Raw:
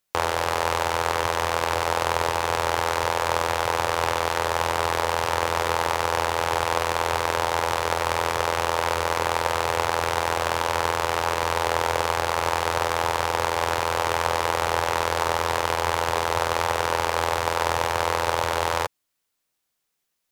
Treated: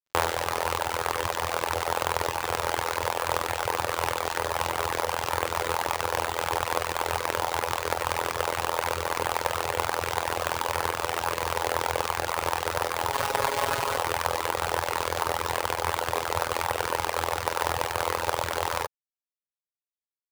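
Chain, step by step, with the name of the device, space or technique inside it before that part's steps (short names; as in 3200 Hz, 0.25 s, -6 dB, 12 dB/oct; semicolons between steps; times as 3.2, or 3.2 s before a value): reverb removal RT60 1.6 s; early companding sampler (sample-rate reducer 11000 Hz, jitter 0%; companded quantiser 6-bit); 13.11–13.97 comb 7.3 ms, depth 80%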